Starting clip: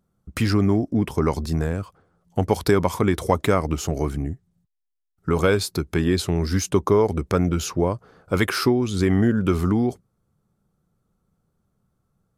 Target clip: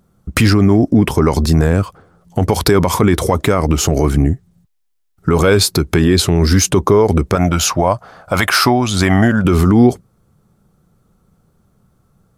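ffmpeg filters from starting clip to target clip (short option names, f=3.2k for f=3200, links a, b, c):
-filter_complex "[0:a]asettb=1/sr,asplit=3[a][b][c];[a]atrim=end=7.354[d];[b]atrim=start=7.35:end=9.45,asetpts=PTS-STARTPTS,afade=t=in:d=0.004:c=qsin,afade=t=out:st=2.096:d=0.004:c=qsin,lowshelf=f=530:t=q:w=3:g=-6[e];[c]atrim=start=9.446[f];[d][e]acrossfade=d=0.004:c1=hsin:c2=qsin[g];[g][f]acrossfade=d=0.004:c1=qsin:c2=hsin,alimiter=level_in=15dB:limit=-1dB:release=50:level=0:latency=1,volume=-1dB"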